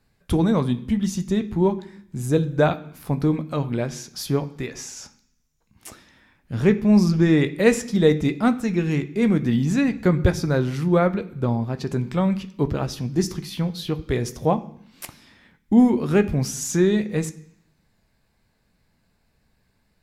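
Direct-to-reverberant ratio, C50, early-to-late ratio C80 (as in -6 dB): 9.0 dB, 16.5 dB, 19.0 dB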